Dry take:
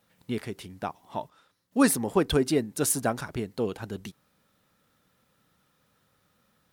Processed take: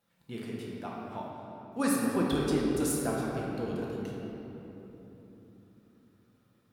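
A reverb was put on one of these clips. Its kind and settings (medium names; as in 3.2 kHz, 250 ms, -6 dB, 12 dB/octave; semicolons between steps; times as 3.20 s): simulated room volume 220 m³, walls hard, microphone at 0.81 m; trim -10 dB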